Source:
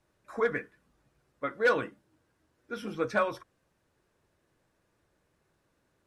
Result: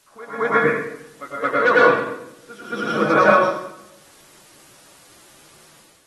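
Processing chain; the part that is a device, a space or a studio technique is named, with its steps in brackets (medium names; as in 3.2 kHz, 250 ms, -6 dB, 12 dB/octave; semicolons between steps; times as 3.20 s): pre-echo 221 ms -13 dB; filmed off a television (band-pass 160–6500 Hz; peaking EQ 1.2 kHz +6.5 dB 0.56 oct; reverberation RT60 0.80 s, pre-delay 92 ms, DRR -5.5 dB; white noise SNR 31 dB; level rider gain up to 9 dB; AAC 32 kbps 48 kHz)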